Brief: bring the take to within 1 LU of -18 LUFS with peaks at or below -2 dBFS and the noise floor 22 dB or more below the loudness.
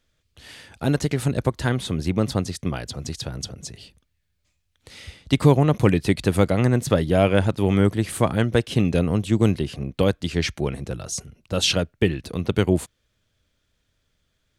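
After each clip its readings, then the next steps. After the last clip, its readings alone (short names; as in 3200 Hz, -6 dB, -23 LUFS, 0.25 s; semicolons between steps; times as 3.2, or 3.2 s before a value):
loudness -22.5 LUFS; peak -4.0 dBFS; loudness target -18.0 LUFS
-> gain +4.5 dB; limiter -2 dBFS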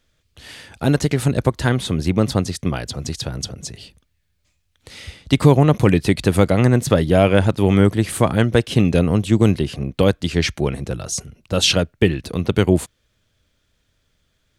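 loudness -18.0 LUFS; peak -2.0 dBFS; noise floor -67 dBFS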